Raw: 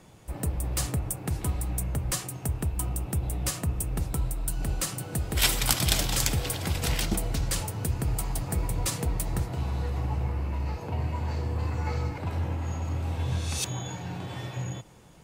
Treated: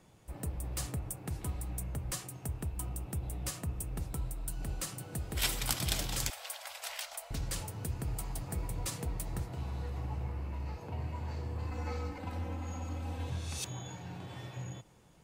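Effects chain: 6.3–7.31 elliptic high-pass 590 Hz, stop band 40 dB; 11.71–13.3 comb 3.9 ms, depth 87%; gain -8.5 dB

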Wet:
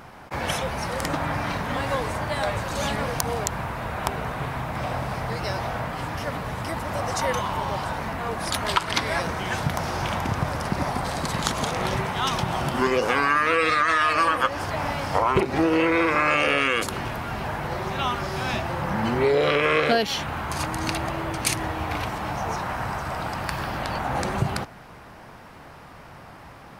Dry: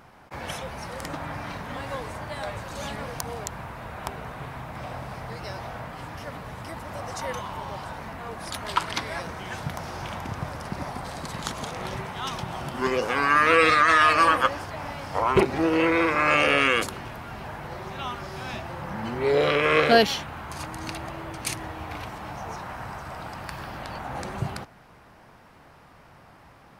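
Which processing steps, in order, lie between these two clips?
compressor, threshold -25 dBFS, peak gain reduction 13 dB; gain +7.5 dB

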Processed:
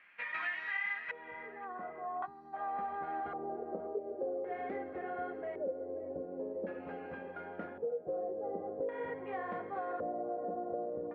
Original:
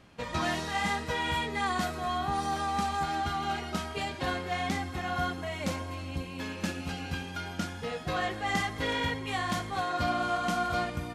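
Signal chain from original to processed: 3.84–6.03 fifteen-band EQ 160 Hz -8 dB, 400 Hz +5 dB, 1000 Hz -7 dB; LFO low-pass square 0.45 Hz 520–1900 Hz; low shelf 110 Hz -5.5 dB; band-pass sweep 2300 Hz -> 500 Hz, 1.22–2.94; darkening echo 0.534 s, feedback 81%, low-pass 860 Hz, level -14 dB; compressor 4:1, threshold -37 dBFS, peak gain reduction 9.5 dB; 2.26–2.54 spectral gain 420–3800 Hz -18 dB; gain +2 dB

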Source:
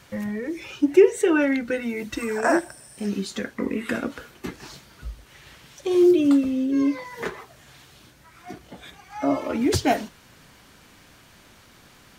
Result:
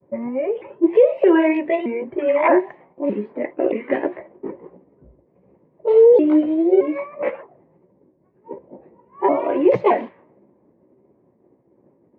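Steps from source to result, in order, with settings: repeated pitch sweeps +6 st, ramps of 0.619 s; speaker cabinet 180–2400 Hz, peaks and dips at 370 Hz +8 dB, 550 Hz +10 dB, 960 Hz +9 dB, 1400 Hz -8 dB, 2100 Hz +5 dB; expander -49 dBFS; low-pass opened by the level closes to 340 Hz, open at -15.5 dBFS; limiter -8 dBFS, peak gain reduction 10.5 dB; gain +2.5 dB

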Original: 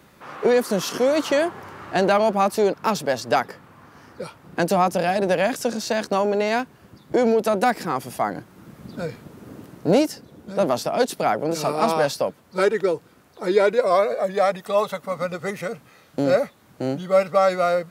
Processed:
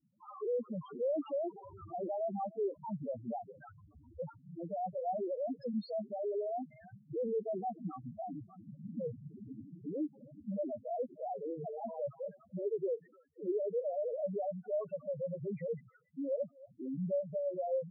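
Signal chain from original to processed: 1.69–4.25 bell 74 Hz +10.5 dB 0.43 oct; treble ducked by the level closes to 2000 Hz, closed at -17 dBFS; thin delay 0.295 s, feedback 31%, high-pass 1500 Hz, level -16 dB; expander -43 dBFS; compressor 6:1, threshold -25 dBFS, peak gain reduction 13 dB; limiter -24.5 dBFS, peak gain reduction 10.5 dB; high shelf 3600 Hz -11 dB; loudest bins only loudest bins 2

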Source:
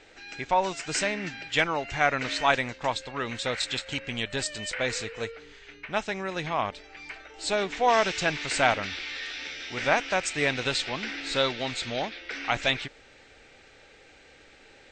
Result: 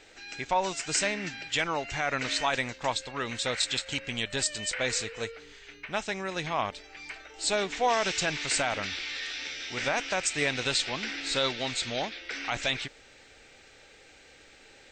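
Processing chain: high shelf 5300 Hz +10 dB; limiter -13.5 dBFS, peak gain reduction 8 dB; gain -2 dB

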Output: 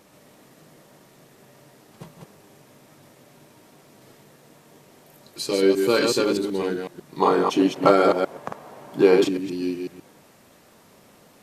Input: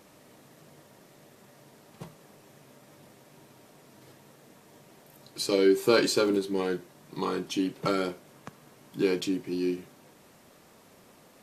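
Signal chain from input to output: reverse delay 0.125 s, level -3.5 dB; 7.2–9.29 bell 730 Hz +14.5 dB 2.2 oct; gain +1.5 dB

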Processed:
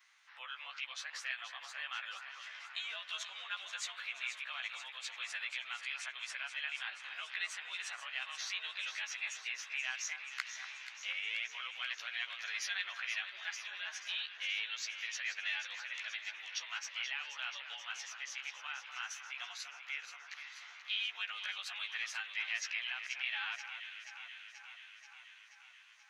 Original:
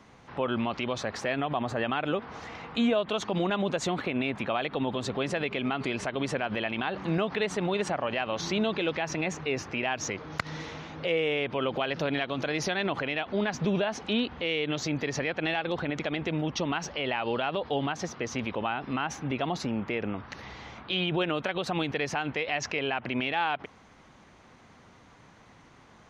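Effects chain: short-time reversal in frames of 31 ms; ladder high-pass 1300 Hz, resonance 25%; tilt +1.5 dB/oct; echo with dull and thin repeats by turns 0.241 s, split 1700 Hz, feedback 82%, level -8 dB

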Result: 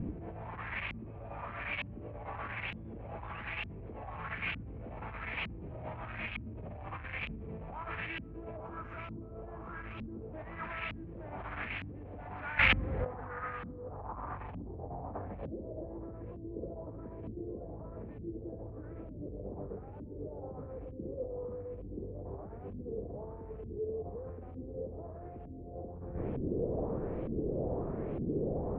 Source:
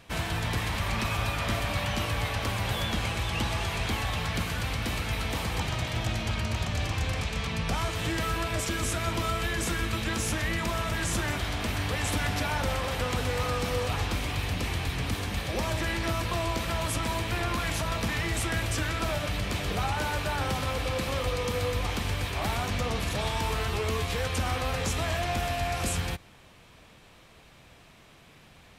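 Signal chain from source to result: soft clip -32 dBFS, distortion -9 dB; 12.58–13.06 passive tone stack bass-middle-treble 5-5-5; negative-ratio compressor -44 dBFS, ratio -0.5; low-pass sweep 2500 Hz -> 440 Hz, 12.51–16.05; 8.57–10.33 band shelf 2800 Hz -11.5 dB; LFO low-pass saw up 1.1 Hz 230–3000 Hz; gain +6 dB

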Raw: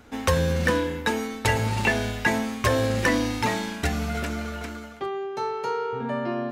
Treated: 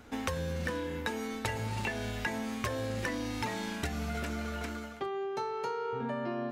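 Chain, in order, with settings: compressor, threshold -29 dBFS, peak gain reduction 12 dB; gain -2.5 dB

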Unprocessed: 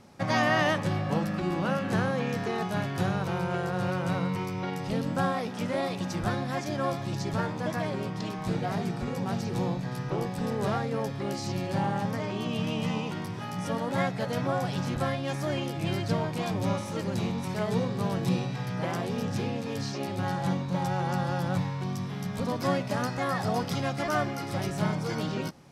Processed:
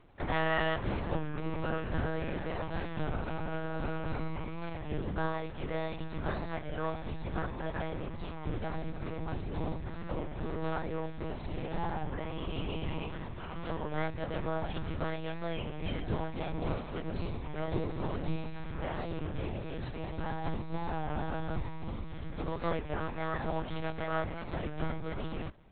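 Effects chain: monotone LPC vocoder at 8 kHz 160 Hz; record warp 33 1/3 rpm, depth 100 cents; gain -5 dB

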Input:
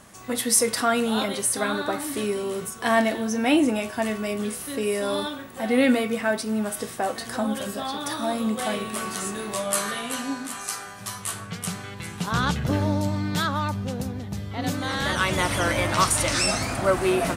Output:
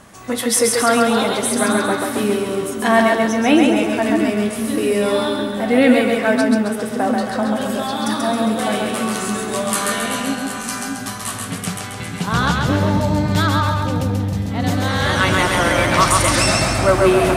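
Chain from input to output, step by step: high shelf 4400 Hz -5.5 dB, from 6.41 s -11.5 dB, from 7.61 s -4 dB; split-band echo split 310 Hz, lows 0.607 s, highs 0.135 s, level -3 dB; gain +6 dB

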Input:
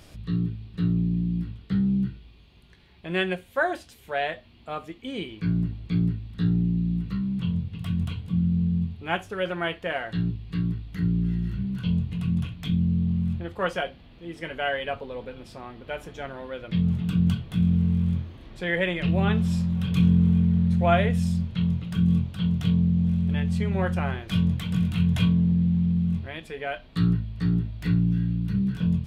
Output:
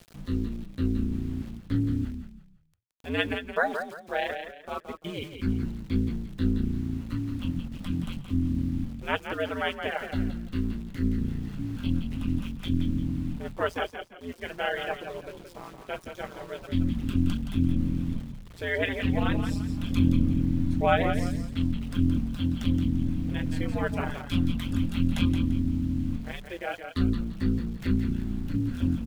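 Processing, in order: ring modulator 86 Hz; reverb removal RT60 0.92 s; sample gate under -48 dBFS; frequency-shifting echo 0.171 s, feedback 30%, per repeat -31 Hz, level -7.5 dB; gain +1.5 dB

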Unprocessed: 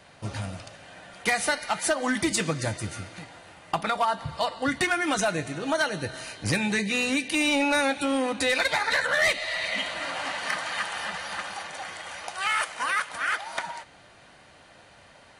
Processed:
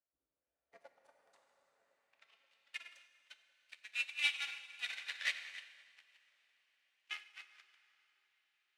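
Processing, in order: zero-crossing step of -33.5 dBFS; passive tone stack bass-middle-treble 10-0-10; time stretch by phase-locked vocoder 0.57×; in parallel at -5 dB: one-sided clip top -28.5 dBFS; on the sum: added harmonics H 3 -34 dB, 7 -16 dB, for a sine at -10.5 dBFS; frequency shift -47 Hz; band-pass sweep 280 Hz -> 2600 Hz, 0.07–2.36; on a send: dark delay 0.529 s, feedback 65%, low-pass 560 Hz, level -7.5 dB; on the sum: plate-style reverb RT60 4.1 s, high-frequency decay 0.8×, DRR -1 dB; upward expander 2.5:1, over -47 dBFS; gain +2 dB

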